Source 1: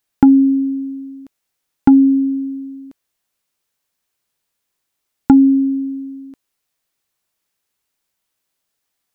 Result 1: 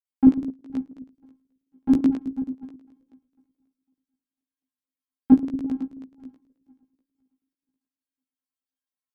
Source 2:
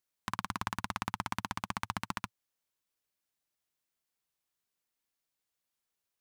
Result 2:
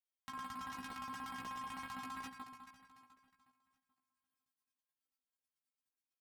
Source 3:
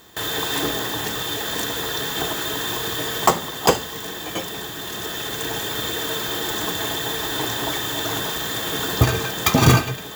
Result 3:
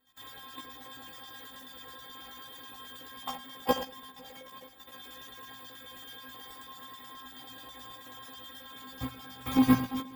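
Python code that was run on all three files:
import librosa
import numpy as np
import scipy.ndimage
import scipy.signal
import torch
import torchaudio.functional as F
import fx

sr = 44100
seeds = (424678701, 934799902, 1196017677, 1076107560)

p1 = fx.reverse_delay_fb(x, sr, ms=250, feedback_pct=51, wet_db=-6)
p2 = fx.highpass(p1, sr, hz=45.0, slope=6)
p3 = fx.low_shelf(p2, sr, hz=130.0, db=7.0)
p4 = fx.stiff_resonator(p3, sr, f0_hz=260.0, decay_s=0.29, stiffness=0.002)
p5 = p4 + fx.echo_single(p4, sr, ms=87, db=-12.5, dry=0)
p6 = fx.dynamic_eq(p5, sr, hz=6800.0, q=0.99, threshold_db=-55.0, ratio=4.0, max_db=-6)
p7 = fx.filter_lfo_notch(p6, sr, shape='square', hz=9.3, low_hz=400.0, high_hz=6100.0, q=0.7)
p8 = fx.level_steps(p7, sr, step_db=9)
p9 = fx.doubler(p8, sr, ms=16.0, db=-2.5)
p10 = fx.upward_expand(p9, sr, threshold_db=-43.0, expansion=1.5)
y = p10 * 10.0 ** (6.0 / 20.0)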